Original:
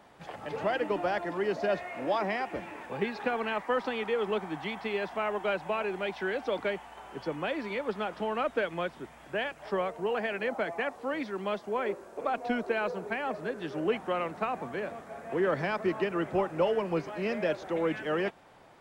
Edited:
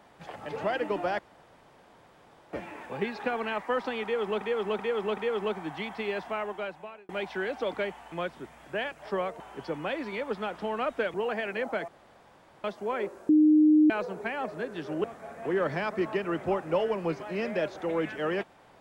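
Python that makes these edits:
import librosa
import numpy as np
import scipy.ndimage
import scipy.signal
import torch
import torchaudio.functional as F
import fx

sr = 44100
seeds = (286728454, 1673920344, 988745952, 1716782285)

y = fx.edit(x, sr, fx.room_tone_fill(start_s=1.19, length_s=1.34),
    fx.repeat(start_s=4.03, length_s=0.38, count=4),
    fx.fade_out_span(start_s=5.11, length_s=0.84),
    fx.move(start_s=8.72, length_s=1.28, to_s=6.98),
    fx.room_tone_fill(start_s=10.74, length_s=0.76),
    fx.bleep(start_s=12.15, length_s=0.61, hz=306.0, db=-16.0),
    fx.cut(start_s=13.9, length_s=1.01), tone=tone)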